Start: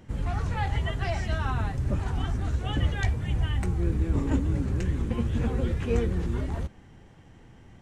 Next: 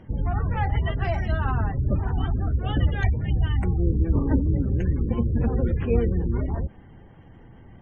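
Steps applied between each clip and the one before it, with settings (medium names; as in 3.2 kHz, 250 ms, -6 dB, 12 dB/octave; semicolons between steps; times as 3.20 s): spectral gate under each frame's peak -30 dB strong; treble shelf 3.9 kHz -11.5 dB; trim +4 dB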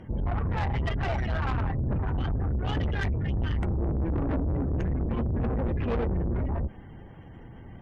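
valve stage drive 28 dB, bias 0.35; trim +3.5 dB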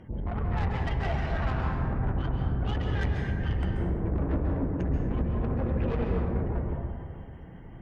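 plate-style reverb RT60 1.9 s, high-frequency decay 0.45×, pre-delay 120 ms, DRR 0 dB; trim -4 dB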